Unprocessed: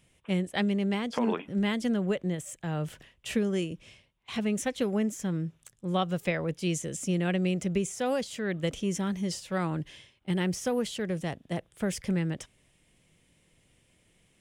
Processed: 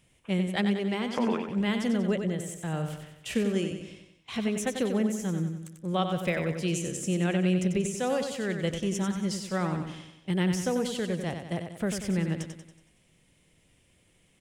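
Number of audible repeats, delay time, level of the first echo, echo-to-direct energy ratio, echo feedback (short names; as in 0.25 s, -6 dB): 5, 93 ms, -7.0 dB, -5.5 dB, 50%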